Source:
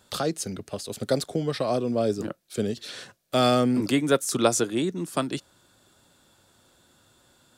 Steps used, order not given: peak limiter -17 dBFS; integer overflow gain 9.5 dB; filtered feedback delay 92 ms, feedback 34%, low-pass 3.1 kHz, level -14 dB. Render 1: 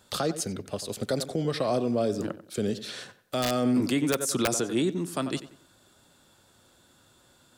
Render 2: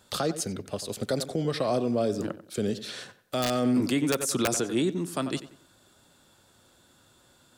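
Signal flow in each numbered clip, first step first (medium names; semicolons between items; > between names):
filtered feedback delay > integer overflow > peak limiter; integer overflow > filtered feedback delay > peak limiter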